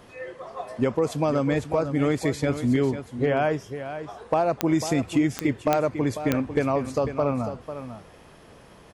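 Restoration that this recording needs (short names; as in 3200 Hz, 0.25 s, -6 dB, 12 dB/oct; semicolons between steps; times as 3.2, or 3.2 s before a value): clip repair -12.5 dBFS; de-click; inverse comb 0.497 s -10.5 dB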